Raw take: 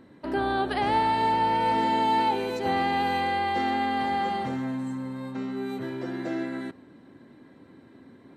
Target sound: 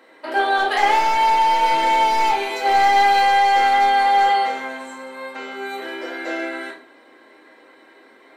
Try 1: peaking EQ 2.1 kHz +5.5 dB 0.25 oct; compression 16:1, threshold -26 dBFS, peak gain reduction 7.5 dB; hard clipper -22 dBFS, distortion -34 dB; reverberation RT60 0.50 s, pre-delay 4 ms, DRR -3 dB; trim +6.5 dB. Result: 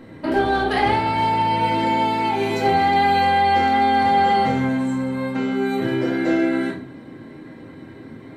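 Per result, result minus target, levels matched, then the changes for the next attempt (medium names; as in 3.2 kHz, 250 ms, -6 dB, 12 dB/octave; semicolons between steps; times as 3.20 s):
compression: peak gain reduction +7.5 dB; 500 Hz band +6.0 dB
remove: compression 16:1, threshold -26 dBFS, peak gain reduction 7.5 dB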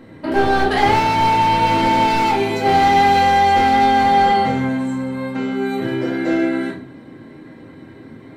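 500 Hz band +5.0 dB
add first: Bessel high-pass 640 Hz, order 4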